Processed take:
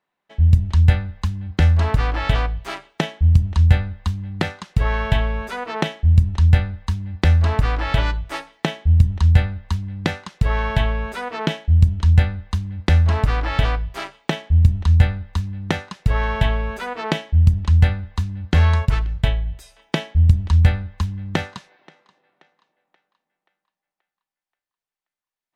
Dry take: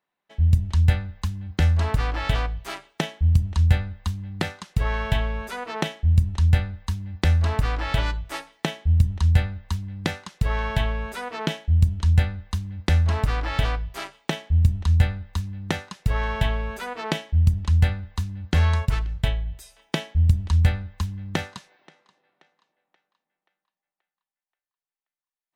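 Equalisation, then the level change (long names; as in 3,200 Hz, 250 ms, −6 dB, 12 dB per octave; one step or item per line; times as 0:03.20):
high-shelf EQ 6,700 Hz −10 dB
+4.5 dB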